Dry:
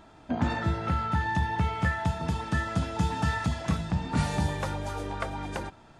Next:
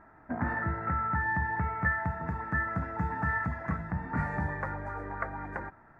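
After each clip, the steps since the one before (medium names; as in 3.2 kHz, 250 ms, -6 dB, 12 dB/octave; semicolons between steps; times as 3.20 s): FFT filter 550 Hz 0 dB, 1 kHz +4 dB, 1.9 kHz +9 dB, 3.1 kHz -26 dB, 4.8 kHz -23 dB; trim -5.5 dB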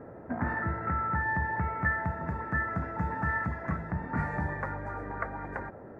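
band noise 67–650 Hz -47 dBFS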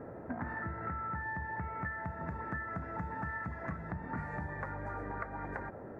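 compression, threshold -36 dBFS, peak gain reduction 12.5 dB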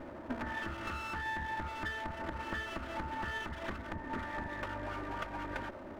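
comb filter that takes the minimum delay 3.3 ms; trim +2 dB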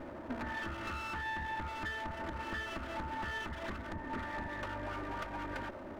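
saturation -32.5 dBFS, distortion -17 dB; trim +1 dB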